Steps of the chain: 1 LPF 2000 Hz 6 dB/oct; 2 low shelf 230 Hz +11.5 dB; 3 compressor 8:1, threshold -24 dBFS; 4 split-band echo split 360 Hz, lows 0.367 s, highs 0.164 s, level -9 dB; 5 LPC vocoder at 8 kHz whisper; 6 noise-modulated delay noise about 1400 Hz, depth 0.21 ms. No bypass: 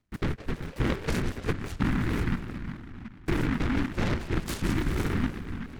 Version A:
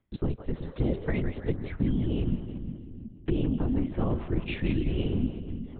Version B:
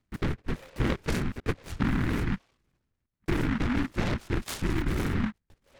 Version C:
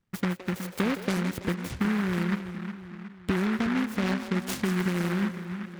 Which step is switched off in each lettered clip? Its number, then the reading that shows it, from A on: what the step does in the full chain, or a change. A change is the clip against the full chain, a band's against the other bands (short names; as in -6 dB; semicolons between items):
6, 2 kHz band -8.5 dB; 4, momentary loudness spread change -3 LU; 5, 125 Hz band -3.5 dB